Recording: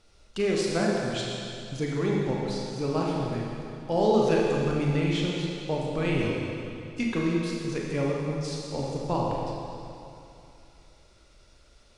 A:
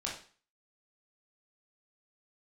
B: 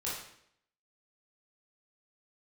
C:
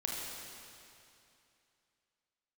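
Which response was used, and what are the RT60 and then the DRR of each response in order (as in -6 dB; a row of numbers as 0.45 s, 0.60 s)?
C; 0.40 s, 0.70 s, 2.7 s; -4.0 dB, -8.0 dB, -3.0 dB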